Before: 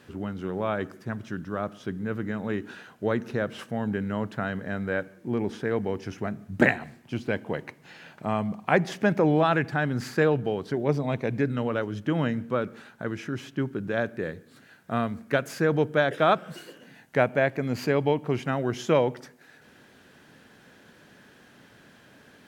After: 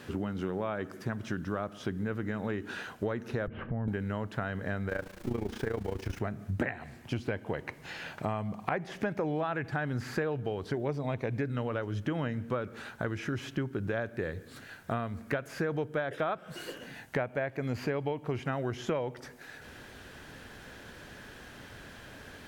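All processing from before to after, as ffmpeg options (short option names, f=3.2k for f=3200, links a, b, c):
-filter_complex "[0:a]asettb=1/sr,asplit=3[a][b][c];[a]atrim=end=3.474[d];[b]atrim=start=3.47:end=3.88,asetpts=PTS-STARTPTS,afade=t=in:d=0.004:c=qsin,afade=t=out:st=0.406:d=0.004:c=qsin,lowpass=f=2.5k:w=0.5412,lowpass=f=2.5k:w=1.3066,aemphasis=mode=reproduction:type=riaa,acompressor=threshold=-37dB:ratio=2.5:attack=3.2:release=140:knee=1:detection=peak[e];[c]atrim=start=3.876[f];[d][e]acrossfade=d=0.004:c1=hsin:c2=qsin[g];[g][f]acrossfade=d=0.004:c1=qsin:c2=hsin,asettb=1/sr,asplit=3[h][i][j];[h]atrim=end=4.894[k];[i]atrim=start=4.89:end=6.2,asetpts=PTS-STARTPTS,afade=t=in:d=0.004:c=qsin,afade=t=out:st=1.306:d=0.004:c=qsin,aeval=exprs='val(0)+0.5*0.0126*sgn(val(0))':c=same,agate=range=-33dB:threshold=-37dB:ratio=3:release=100:detection=peak,tremolo=f=28:d=0.824[l];[j]atrim=start=6.196[m];[k][l]acrossfade=d=0.004:c1=hsin:c2=qsin[n];[n][m]acrossfade=d=0.004:c1=qsin:c2=hsin,acrossover=split=2800[o][p];[p]acompressor=threshold=-47dB:ratio=4:attack=1:release=60[q];[o][q]amix=inputs=2:normalize=0,asubboost=boost=6.5:cutoff=67,acompressor=threshold=-36dB:ratio=6,volume=6dB"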